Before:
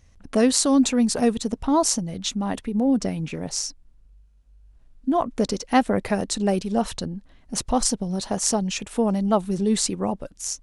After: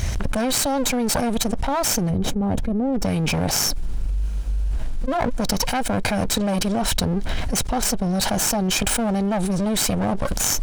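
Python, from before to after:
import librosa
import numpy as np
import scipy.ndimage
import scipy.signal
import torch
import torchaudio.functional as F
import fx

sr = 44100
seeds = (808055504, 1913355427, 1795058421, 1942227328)

y = fx.lower_of_two(x, sr, delay_ms=1.3)
y = fx.tilt_shelf(y, sr, db=10.0, hz=900.0, at=(2.09, 3.02), fade=0.02)
y = 10.0 ** (-9.0 / 20.0) * (np.abs((y / 10.0 ** (-9.0 / 20.0) + 3.0) % 4.0 - 2.0) - 1.0)
y = fx.env_flatten(y, sr, amount_pct=100)
y = y * librosa.db_to_amplitude(-7.0)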